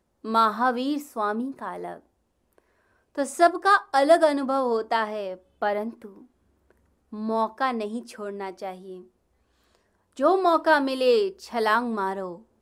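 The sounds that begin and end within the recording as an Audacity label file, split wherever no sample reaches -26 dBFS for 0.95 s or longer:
3.180000	5.880000	sound
7.230000	8.700000	sound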